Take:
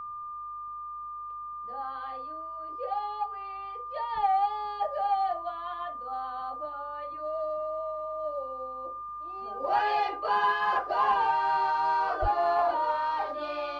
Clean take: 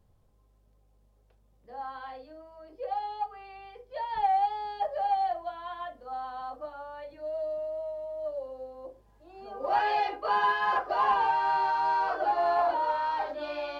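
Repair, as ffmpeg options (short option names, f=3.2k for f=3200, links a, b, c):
-filter_complex "[0:a]bandreject=f=1.2k:w=30,asplit=3[a][b][c];[a]afade=t=out:st=12.21:d=0.02[d];[b]highpass=f=140:w=0.5412,highpass=f=140:w=1.3066,afade=t=in:st=12.21:d=0.02,afade=t=out:st=12.33:d=0.02[e];[c]afade=t=in:st=12.33:d=0.02[f];[d][e][f]amix=inputs=3:normalize=0"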